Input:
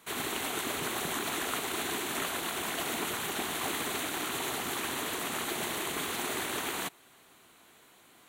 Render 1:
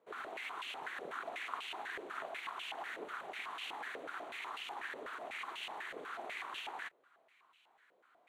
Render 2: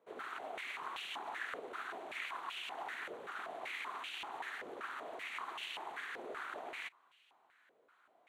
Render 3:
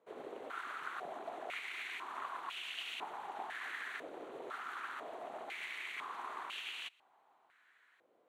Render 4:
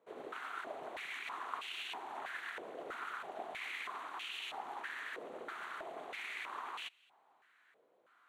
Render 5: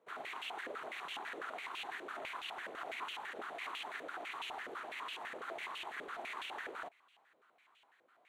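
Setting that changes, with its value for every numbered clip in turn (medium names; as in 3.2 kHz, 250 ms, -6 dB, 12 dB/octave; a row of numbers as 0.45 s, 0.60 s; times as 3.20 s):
step-sequenced band-pass, rate: 8.1 Hz, 5.2 Hz, 2 Hz, 3.1 Hz, 12 Hz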